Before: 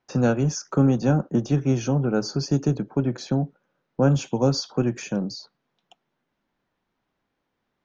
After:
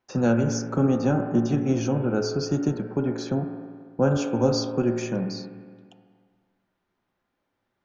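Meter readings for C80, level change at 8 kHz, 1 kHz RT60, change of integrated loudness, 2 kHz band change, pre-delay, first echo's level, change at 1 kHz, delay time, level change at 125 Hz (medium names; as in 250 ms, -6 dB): 7.0 dB, no reading, 1.8 s, -1.0 dB, -0.5 dB, 4 ms, no echo, -0.5 dB, no echo, -4.0 dB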